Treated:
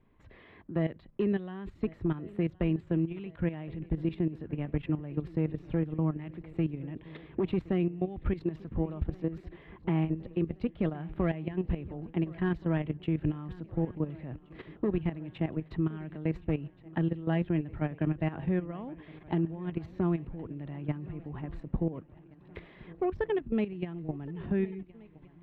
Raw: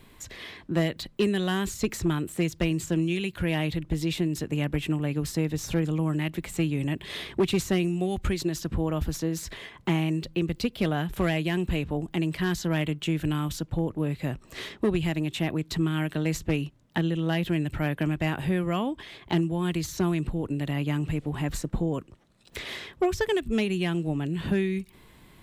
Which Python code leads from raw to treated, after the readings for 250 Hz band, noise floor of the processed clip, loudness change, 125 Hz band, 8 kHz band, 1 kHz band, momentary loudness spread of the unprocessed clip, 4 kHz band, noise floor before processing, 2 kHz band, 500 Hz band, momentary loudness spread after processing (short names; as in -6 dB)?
-4.5 dB, -57 dBFS, -5.0 dB, -4.5 dB, under -40 dB, -7.5 dB, 5 LU, -19.5 dB, -54 dBFS, -11.5 dB, -5.0 dB, 11 LU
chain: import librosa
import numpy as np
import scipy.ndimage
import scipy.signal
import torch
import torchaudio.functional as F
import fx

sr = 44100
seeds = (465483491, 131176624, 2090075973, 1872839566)

p1 = fx.high_shelf(x, sr, hz=3300.0, db=-10.5)
p2 = fx.notch(p1, sr, hz=1500.0, q=28.0)
p3 = fx.level_steps(p2, sr, step_db=13)
p4 = fx.air_absorb(p3, sr, metres=480.0)
y = p4 + fx.echo_swing(p4, sr, ms=1424, ratio=3, feedback_pct=50, wet_db=-21.0, dry=0)